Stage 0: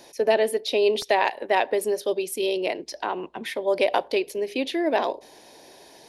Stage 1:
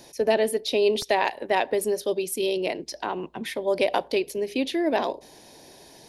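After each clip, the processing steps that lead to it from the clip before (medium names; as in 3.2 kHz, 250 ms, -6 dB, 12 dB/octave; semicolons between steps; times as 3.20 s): tone controls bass +10 dB, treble +4 dB; trim -2 dB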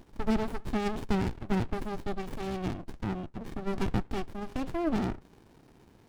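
sliding maximum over 65 samples; trim -3.5 dB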